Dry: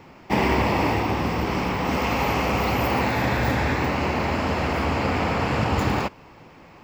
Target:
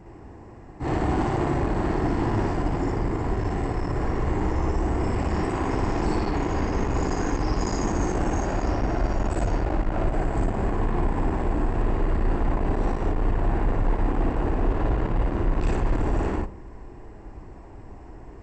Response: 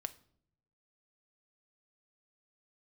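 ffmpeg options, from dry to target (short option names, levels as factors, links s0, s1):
-filter_complex "[0:a]asubboost=boost=3:cutoff=180,asoftclip=type=tanh:threshold=0.0668,asetrate=16361,aresample=44100,asplit=2[s0][s1];[1:a]atrim=start_sample=2205,asetrate=70560,aresample=44100,adelay=58[s2];[s1][s2]afir=irnorm=-1:irlink=0,volume=2.24[s3];[s0][s3]amix=inputs=2:normalize=0"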